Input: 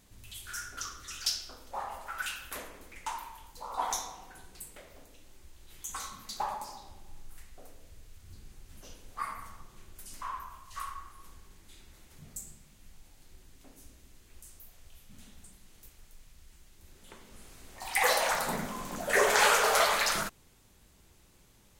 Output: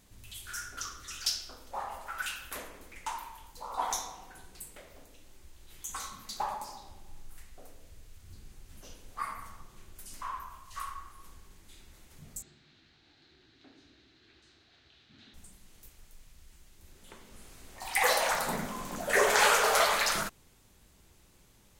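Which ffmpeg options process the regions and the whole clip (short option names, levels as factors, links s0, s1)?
-filter_complex "[0:a]asettb=1/sr,asplit=3[s0][s1][s2];[s0]atrim=end=12.424[s3];[s1]atrim=start=12.42:end=15.34,asetpts=PTS-STARTPTS,afade=t=in:d=0.004:c=qsin,afade=t=out:st=2.916:d=0.004:c=qsin,acompressor=mode=upward:threshold=0.00251:ratio=2.5:attack=3.2:release=140:knee=2.83:detection=peak,highpass=130,equalizer=f=190:t=q:w=4:g=-9,equalizer=f=330:t=q:w=4:g=6,equalizer=f=540:t=q:w=4:g=-8,equalizer=f=1000:t=q:w=4:g=-6,equalizer=f=1600:t=q:w=4:g=5,equalizer=f=4000:t=q:w=4:g=9,lowpass=f=4500:w=0.5412,lowpass=f=4500:w=1.3066[s4];[s2]atrim=start=15.336[s5];[s3][s4]acrossfade=d=0.004:c1=hsin:c2=qsin[s6];[s6][s5]acrossfade=d=0.004:c1=qsin:c2=hsin"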